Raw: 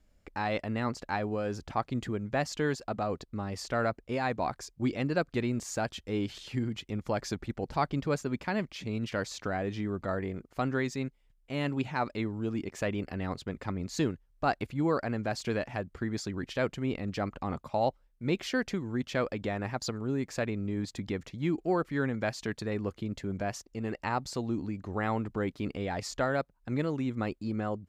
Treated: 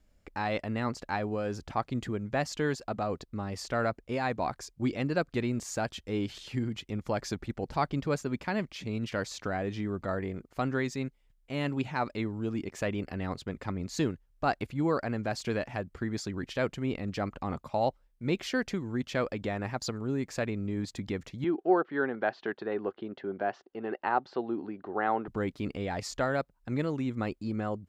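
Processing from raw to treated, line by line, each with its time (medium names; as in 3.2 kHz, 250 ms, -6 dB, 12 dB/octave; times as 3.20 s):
21.44–25.28 s: cabinet simulation 290–3300 Hz, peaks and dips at 380 Hz +7 dB, 770 Hz +7 dB, 1.5 kHz +5 dB, 2.3 kHz -7 dB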